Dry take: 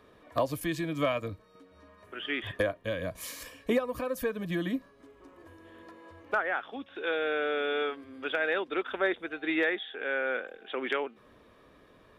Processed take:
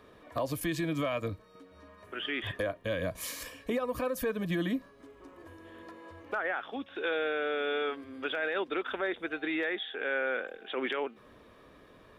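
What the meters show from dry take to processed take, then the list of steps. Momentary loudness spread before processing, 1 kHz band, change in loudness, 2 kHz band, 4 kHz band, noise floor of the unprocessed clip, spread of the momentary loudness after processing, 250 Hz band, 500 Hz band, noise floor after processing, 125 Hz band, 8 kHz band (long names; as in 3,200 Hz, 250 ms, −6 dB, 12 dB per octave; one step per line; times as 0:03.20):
11 LU, −2.0 dB, −1.5 dB, −2.0 dB, 0.0 dB, −59 dBFS, 17 LU, −1.0 dB, −2.0 dB, −57 dBFS, +0.5 dB, +2.0 dB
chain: brickwall limiter −25 dBFS, peak gain reduction 8 dB
level +2 dB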